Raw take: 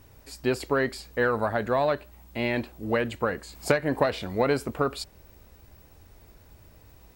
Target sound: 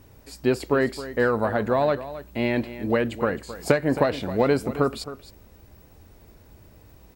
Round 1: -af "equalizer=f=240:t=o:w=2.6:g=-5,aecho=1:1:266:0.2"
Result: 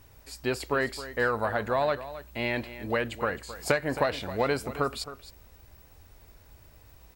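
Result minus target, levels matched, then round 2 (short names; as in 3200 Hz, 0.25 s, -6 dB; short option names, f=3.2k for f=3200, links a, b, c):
250 Hz band -4.0 dB
-af "equalizer=f=240:t=o:w=2.6:g=5,aecho=1:1:266:0.2"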